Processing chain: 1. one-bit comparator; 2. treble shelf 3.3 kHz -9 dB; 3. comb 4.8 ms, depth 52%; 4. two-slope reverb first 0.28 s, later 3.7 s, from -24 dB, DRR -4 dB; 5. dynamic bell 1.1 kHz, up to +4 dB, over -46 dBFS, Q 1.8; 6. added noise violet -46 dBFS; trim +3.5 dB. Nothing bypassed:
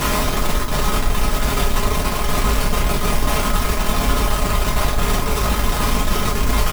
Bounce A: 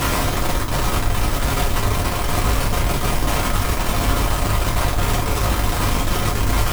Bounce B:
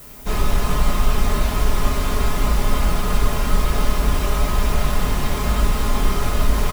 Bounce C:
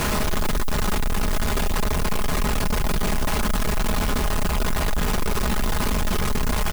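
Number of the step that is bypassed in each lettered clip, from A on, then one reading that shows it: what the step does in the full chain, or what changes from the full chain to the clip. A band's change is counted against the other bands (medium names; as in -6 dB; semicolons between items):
3, 125 Hz band +3.0 dB; 1, distortion -2 dB; 4, crest factor change -7.5 dB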